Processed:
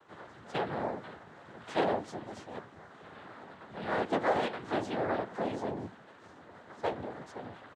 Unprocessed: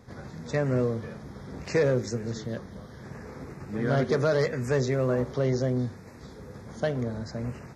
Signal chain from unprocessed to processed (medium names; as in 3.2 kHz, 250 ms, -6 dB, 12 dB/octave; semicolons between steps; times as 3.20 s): band-pass filter 1.1 kHz, Q 1.1; noise-vocoded speech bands 6; harmony voices -4 st -3 dB, -3 st -5 dB; trim -1 dB